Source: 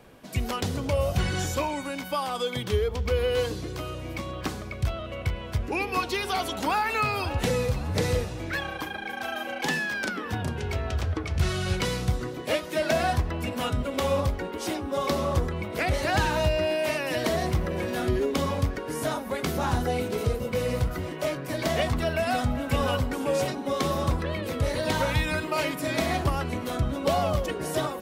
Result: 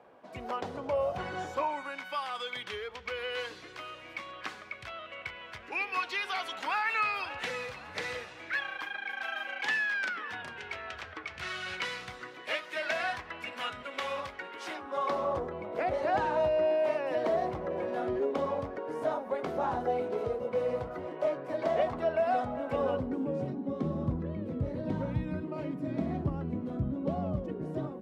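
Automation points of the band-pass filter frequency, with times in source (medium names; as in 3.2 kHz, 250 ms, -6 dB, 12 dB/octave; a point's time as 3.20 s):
band-pass filter, Q 1.2
1.46 s 790 Hz
2.17 s 1.9 kHz
14.55 s 1.9 kHz
15.44 s 650 Hz
22.69 s 650 Hz
23.32 s 200 Hz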